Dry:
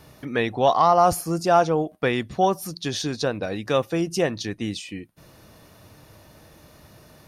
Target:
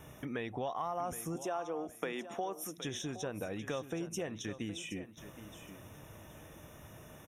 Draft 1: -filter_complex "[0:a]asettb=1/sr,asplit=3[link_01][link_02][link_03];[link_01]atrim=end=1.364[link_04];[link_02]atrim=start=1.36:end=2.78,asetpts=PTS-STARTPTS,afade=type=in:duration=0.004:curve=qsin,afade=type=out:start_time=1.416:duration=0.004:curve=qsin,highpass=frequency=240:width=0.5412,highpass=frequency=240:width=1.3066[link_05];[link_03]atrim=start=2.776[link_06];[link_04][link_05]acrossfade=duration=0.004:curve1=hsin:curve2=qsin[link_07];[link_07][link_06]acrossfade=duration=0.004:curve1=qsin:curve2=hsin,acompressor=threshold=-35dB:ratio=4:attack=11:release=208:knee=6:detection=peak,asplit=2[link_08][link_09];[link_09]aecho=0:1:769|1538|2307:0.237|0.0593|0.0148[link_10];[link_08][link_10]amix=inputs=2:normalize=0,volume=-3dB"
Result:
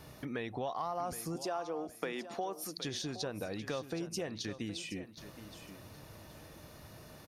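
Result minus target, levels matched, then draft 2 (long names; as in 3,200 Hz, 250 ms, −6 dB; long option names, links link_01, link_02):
4,000 Hz band +3.0 dB
-filter_complex "[0:a]asettb=1/sr,asplit=3[link_01][link_02][link_03];[link_01]atrim=end=1.364[link_04];[link_02]atrim=start=1.36:end=2.78,asetpts=PTS-STARTPTS,afade=type=in:duration=0.004:curve=qsin,afade=type=out:start_time=1.416:duration=0.004:curve=qsin,highpass=frequency=240:width=0.5412,highpass=frequency=240:width=1.3066[link_05];[link_03]atrim=start=2.776[link_06];[link_04][link_05]acrossfade=duration=0.004:curve1=hsin:curve2=qsin[link_07];[link_07][link_06]acrossfade=duration=0.004:curve1=qsin:curve2=hsin,acompressor=threshold=-35dB:ratio=4:attack=11:release=208:knee=6:detection=peak,asuperstop=centerf=4500:order=8:qfactor=2.6,asplit=2[link_08][link_09];[link_09]aecho=0:1:769|1538|2307:0.237|0.0593|0.0148[link_10];[link_08][link_10]amix=inputs=2:normalize=0,volume=-3dB"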